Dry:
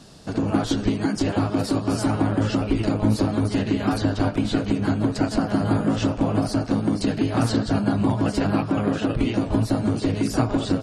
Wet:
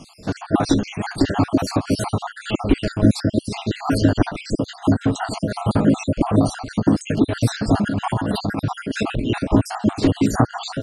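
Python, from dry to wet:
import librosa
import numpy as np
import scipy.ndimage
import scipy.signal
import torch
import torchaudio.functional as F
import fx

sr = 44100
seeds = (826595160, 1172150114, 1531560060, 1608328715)

y = fx.spec_dropout(x, sr, seeds[0], share_pct=57)
y = fx.over_compress(y, sr, threshold_db=-27.0, ratio=-1.0, at=(7.82, 9.39))
y = y * librosa.db_to_amplitude(6.5)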